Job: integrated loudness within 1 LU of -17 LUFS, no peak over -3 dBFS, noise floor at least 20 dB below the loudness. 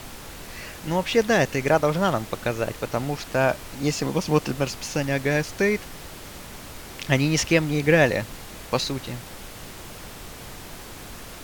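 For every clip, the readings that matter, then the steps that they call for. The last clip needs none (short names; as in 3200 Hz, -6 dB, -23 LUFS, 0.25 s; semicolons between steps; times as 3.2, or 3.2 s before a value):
noise floor -40 dBFS; noise floor target -44 dBFS; loudness -23.5 LUFS; peak -5.0 dBFS; loudness target -17.0 LUFS
-> noise print and reduce 6 dB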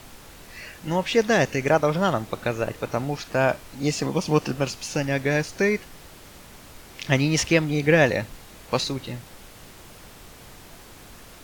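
noise floor -46 dBFS; loudness -23.5 LUFS; peak -5.0 dBFS; loudness target -17.0 LUFS
-> gain +6.5 dB; limiter -3 dBFS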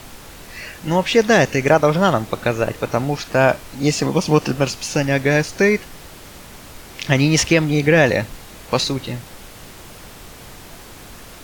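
loudness -17.5 LUFS; peak -3.0 dBFS; noise floor -40 dBFS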